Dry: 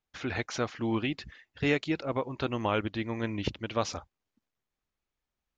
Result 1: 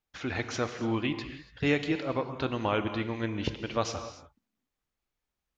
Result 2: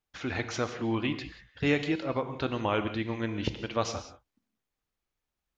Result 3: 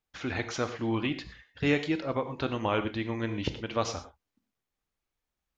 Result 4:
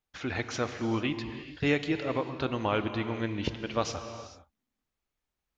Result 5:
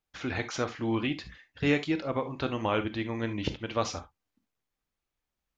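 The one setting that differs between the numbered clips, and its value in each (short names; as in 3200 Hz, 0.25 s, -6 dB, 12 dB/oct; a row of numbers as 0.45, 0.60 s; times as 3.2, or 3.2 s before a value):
non-linear reverb, gate: 310, 210, 140, 470, 90 ms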